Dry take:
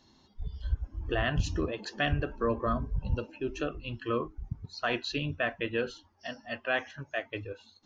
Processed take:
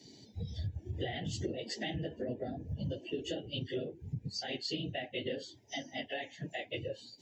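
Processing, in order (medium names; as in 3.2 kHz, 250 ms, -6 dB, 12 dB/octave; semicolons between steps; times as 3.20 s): phase randomisation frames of 50 ms; high-pass 89 Hz 24 dB/octave; compression 6:1, threshold -42 dBFS, peak gain reduction 17 dB; Butterworth band-stop 1.1 kHz, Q 0.87; speed mistake 44.1 kHz file played as 48 kHz; trim +7.5 dB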